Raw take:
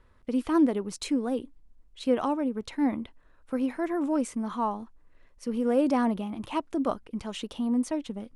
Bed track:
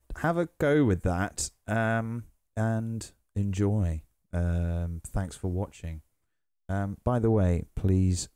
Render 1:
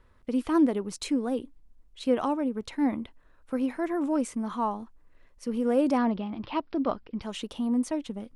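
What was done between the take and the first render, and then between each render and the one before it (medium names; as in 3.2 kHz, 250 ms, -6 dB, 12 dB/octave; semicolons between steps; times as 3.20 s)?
5.98–7.22 s: careless resampling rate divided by 4×, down none, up filtered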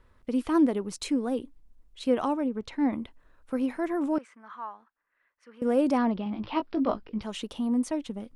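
2.46–2.93 s: distance through air 67 m; 4.18–5.62 s: band-pass filter 1.6 kHz, Q 2.4; 6.24–7.23 s: doubling 19 ms -6 dB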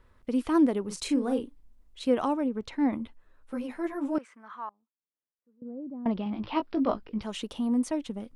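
0.82–2.05 s: doubling 38 ms -7 dB; 2.98–4.15 s: three-phase chorus; 4.69–6.06 s: ladder band-pass 180 Hz, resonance 25%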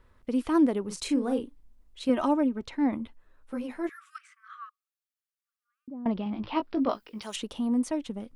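2.09–2.62 s: comb 3.2 ms, depth 64%; 3.89–5.88 s: brick-wall FIR high-pass 1.1 kHz; 6.89–7.36 s: RIAA curve recording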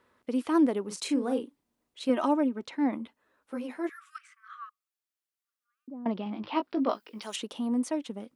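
high-pass 220 Hz 12 dB/octave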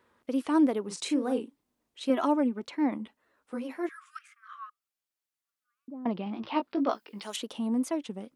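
wow and flutter 90 cents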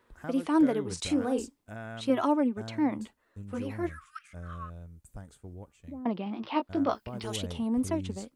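add bed track -14.5 dB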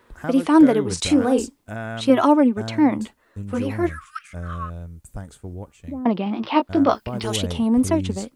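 trim +10.5 dB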